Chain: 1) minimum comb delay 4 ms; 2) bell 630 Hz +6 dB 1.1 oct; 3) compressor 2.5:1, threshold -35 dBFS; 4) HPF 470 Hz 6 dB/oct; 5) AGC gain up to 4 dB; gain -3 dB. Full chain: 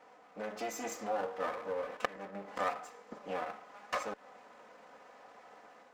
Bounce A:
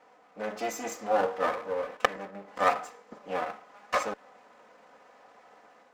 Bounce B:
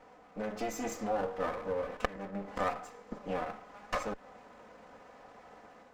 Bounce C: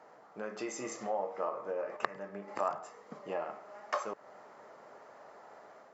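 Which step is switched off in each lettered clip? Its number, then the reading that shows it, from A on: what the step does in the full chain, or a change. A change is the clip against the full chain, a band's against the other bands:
3, mean gain reduction 5.5 dB; 4, 125 Hz band +9.0 dB; 1, momentary loudness spread change -1 LU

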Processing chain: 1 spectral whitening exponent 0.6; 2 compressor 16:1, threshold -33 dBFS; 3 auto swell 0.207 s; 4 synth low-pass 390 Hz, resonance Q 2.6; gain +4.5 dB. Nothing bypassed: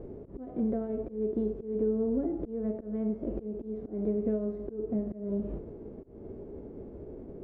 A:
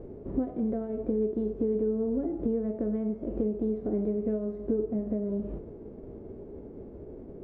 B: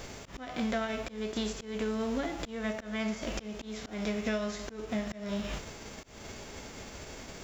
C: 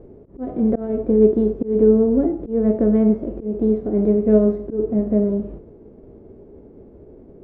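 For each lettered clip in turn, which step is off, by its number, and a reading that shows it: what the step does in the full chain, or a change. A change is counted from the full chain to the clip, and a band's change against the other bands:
3, loudness change +2.5 LU; 4, 1 kHz band +13.5 dB; 2, mean gain reduction 8.0 dB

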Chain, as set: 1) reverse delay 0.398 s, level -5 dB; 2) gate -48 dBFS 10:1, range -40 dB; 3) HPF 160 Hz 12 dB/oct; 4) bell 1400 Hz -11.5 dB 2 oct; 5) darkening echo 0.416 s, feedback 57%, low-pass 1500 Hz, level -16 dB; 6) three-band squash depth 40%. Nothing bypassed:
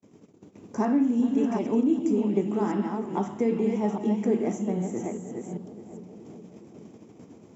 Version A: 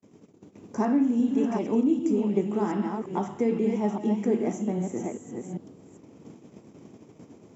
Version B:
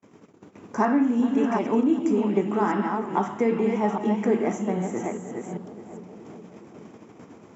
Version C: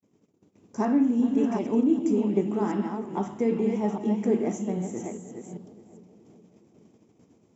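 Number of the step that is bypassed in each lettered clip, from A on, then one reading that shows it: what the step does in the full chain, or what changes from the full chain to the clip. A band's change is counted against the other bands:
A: 5, momentary loudness spread change -7 LU; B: 4, 2 kHz band +7.5 dB; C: 6, momentary loudness spread change -3 LU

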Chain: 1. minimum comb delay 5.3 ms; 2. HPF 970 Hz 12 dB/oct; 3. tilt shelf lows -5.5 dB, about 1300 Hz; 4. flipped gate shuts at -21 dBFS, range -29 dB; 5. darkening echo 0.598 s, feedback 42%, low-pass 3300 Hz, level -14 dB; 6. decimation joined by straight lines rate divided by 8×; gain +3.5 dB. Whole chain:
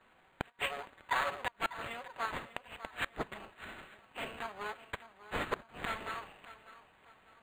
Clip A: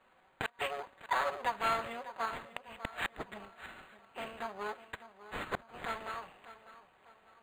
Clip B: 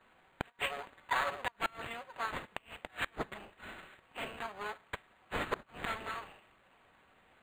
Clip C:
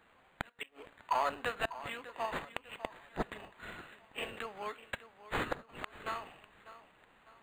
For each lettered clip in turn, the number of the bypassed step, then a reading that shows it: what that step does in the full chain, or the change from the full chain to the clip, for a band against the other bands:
3, 1 kHz band +3.0 dB; 5, momentary loudness spread change -2 LU; 1, 2 kHz band -3.0 dB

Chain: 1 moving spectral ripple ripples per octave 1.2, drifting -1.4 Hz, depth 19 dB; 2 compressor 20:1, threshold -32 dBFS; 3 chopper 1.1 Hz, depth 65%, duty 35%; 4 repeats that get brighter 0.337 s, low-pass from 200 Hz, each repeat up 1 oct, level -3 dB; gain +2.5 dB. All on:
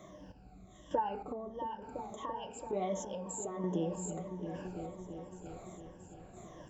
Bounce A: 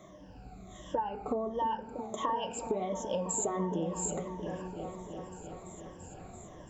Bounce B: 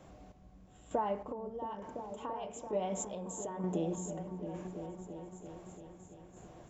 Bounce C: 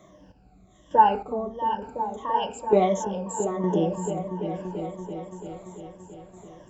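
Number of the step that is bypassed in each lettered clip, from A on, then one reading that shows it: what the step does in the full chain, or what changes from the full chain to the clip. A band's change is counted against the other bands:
3, crest factor change -2.5 dB; 1, 4 kHz band -2.0 dB; 2, mean gain reduction 7.5 dB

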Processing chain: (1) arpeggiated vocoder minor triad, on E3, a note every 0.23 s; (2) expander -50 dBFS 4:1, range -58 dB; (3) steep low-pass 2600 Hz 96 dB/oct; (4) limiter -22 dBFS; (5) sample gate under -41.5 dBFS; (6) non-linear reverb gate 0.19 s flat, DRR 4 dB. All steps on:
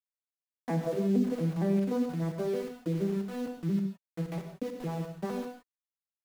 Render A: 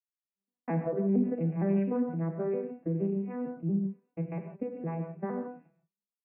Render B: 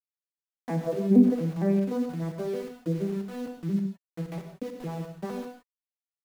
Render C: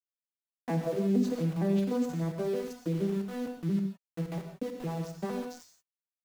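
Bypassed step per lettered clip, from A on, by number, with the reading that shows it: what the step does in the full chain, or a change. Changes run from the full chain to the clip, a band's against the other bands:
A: 5, distortion -20 dB; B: 4, crest factor change +5.5 dB; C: 3, 8 kHz band +3.0 dB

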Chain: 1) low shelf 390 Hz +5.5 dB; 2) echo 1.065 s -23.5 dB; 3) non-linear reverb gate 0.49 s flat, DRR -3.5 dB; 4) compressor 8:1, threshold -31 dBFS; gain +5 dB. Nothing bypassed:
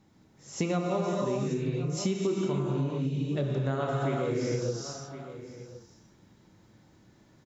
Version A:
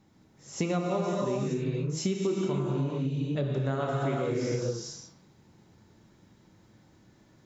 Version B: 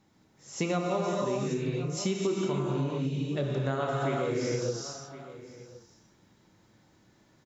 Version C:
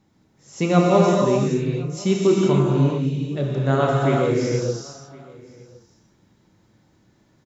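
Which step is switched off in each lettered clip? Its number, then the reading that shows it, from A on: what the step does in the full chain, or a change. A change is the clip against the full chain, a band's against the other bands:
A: 2, momentary loudness spread change -9 LU; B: 1, 125 Hz band -3.5 dB; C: 4, mean gain reduction 7.0 dB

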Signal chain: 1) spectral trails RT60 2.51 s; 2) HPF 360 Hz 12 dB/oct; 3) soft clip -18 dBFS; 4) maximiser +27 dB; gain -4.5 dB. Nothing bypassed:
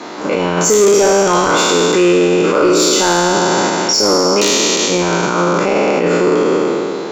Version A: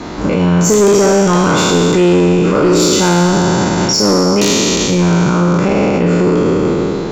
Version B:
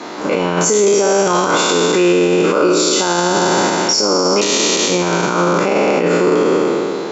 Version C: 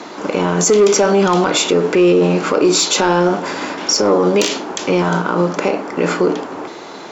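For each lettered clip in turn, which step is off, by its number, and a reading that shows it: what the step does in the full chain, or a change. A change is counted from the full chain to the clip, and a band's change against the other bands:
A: 2, crest factor change -1.5 dB; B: 3, distortion -16 dB; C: 1, 125 Hz band +4.5 dB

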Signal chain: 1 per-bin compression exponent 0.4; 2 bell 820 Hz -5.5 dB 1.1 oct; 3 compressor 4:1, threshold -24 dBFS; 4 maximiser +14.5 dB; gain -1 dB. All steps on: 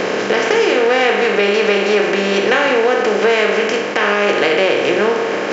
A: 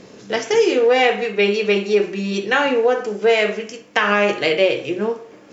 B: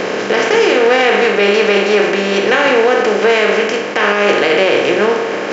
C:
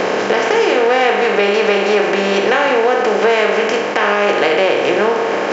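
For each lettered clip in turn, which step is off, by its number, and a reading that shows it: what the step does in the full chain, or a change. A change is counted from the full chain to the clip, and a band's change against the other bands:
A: 1, crest factor change +4.0 dB; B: 3, mean gain reduction 3.0 dB; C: 2, 1 kHz band +3.5 dB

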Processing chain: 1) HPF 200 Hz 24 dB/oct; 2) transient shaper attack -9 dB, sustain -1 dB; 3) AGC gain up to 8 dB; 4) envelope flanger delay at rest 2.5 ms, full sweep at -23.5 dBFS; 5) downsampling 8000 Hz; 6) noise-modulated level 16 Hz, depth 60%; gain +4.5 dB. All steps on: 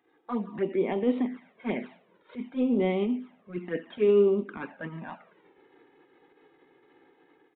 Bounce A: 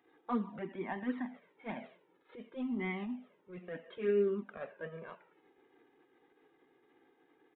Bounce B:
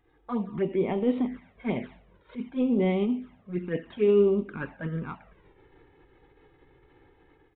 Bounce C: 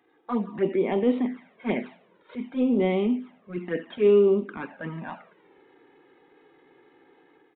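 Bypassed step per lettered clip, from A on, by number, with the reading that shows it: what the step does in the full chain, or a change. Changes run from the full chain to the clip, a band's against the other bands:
3, crest factor change +1.5 dB; 1, 125 Hz band +5.0 dB; 6, loudness change +3.0 LU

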